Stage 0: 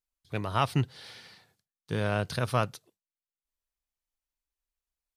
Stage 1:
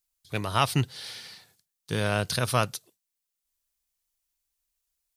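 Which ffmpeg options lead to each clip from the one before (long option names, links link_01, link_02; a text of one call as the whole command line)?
ffmpeg -i in.wav -af "highshelf=frequency=3400:gain=12,volume=1.5dB" out.wav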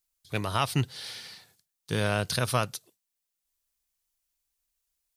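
ffmpeg -i in.wav -af "alimiter=limit=-12dB:level=0:latency=1:release=300" out.wav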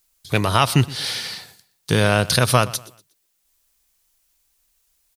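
ffmpeg -i in.wav -filter_complex "[0:a]asplit=2[link_01][link_02];[link_02]acompressor=threshold=-34dB:ratio=6,volume=2dB[link_03];[link_01][link_03]amix=inputs=2:normalize=0,aecho=1:1:120|240|360:0.1|0.034|0.0116,volume=7.5dB" out.wav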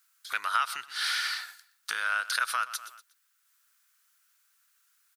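ffmpeg -i in.wav -af "acompressor=threshold=-24dB:ratio=16,highpass=frequency=1400:width_type=q:width=5.4,volume=-3.5dB" out.wav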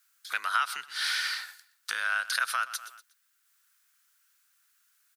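ffmpeg -i in.wav -af "afreqshift=40" out.wav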